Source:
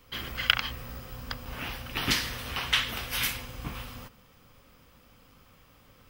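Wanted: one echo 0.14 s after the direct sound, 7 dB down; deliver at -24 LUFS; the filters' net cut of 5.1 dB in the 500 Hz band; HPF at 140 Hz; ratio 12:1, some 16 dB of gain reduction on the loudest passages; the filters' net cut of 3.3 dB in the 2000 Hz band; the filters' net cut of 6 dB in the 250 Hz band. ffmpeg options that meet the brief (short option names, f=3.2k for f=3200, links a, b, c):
-af "highpass=140,equalizer=f=250:t=o:g=-5.5,equalizer=f=500:t=o:g=-4.5,equalizer=f=2k:t=o:g=-4,acompressor=threshold=-35dB:ratio=12,aecho=1:1:140:0.447,volume=15dB"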